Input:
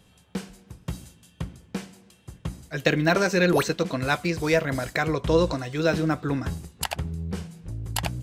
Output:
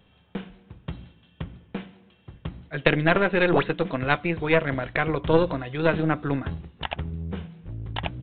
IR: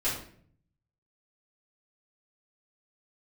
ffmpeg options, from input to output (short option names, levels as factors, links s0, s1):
-af "bandreject=f=60:t=h:w=6,bandreject=f=120:t=h:w=6,bandreject=f=180:t=h:w=6,bandreject=f=240:t=h:w=6,bandreject=f=300:t=h:w=6,aeval=exprs='0.562*(cos(1*acos(clip(val(0)/0.562,-1,1)))-cos(1*PI/2))+0.0708*(cos(3*acos(clip(val(0)/0.562,-1,1)))-cos(3*PI/2))+0.0631*(cos(4*acos(clip(val(0)/0.562,-1,1)))-cos(4*PI/2))':c=same,aresample=8000,aresample=44100,volume=1.5"